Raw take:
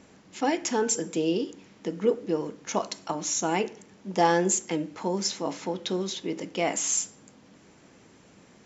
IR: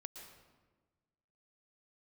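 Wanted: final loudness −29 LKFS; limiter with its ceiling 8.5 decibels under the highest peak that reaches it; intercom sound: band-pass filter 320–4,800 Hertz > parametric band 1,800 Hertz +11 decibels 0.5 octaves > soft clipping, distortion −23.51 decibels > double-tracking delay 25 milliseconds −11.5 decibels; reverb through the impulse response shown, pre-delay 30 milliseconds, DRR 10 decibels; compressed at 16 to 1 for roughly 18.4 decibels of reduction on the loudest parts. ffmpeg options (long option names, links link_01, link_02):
-filter_complex "[0:a]acompressor=threshold=-35dB:ratio=16,alimiter=level_in=7dB:limit=-24dB:level=0:latency=1,volume=-7dB,asplit=2[link_01][link_02];[1:a]atrim=start_sample=2205,adelay=30[link_03];[link_02][link_03]afir=irnorm=-1:irlink=0,volume=-5.5dB[link_04];[link_01][link_04]amix=inputs=2:normalize=0,highpass=320,lowpass=4800,equalizer=frequency=1800:width_type=o:width=0.5:gain=11,asoftclip=threshold=-30.5dB,asplit=2[link_05][link_06];[link_06]adelay=25,volume=-11.5dB[link_07];[link_05][link_07]amix=inputs=2:normalize=0,volume=15dB"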